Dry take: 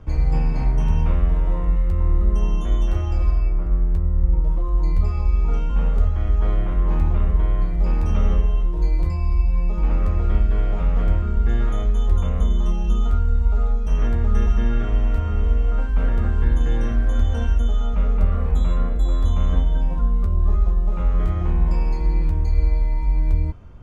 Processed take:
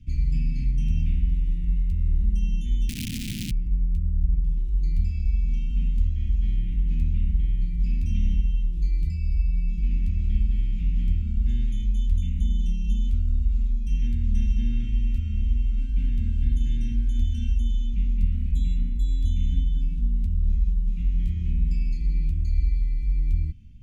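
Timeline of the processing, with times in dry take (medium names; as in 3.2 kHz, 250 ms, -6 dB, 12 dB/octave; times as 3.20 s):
2.89–3.51 s: integer overflow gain 19 dB
whole clip: elliptic band-stop 240–2500 Hz, stop band 70 dB; trim -4 dB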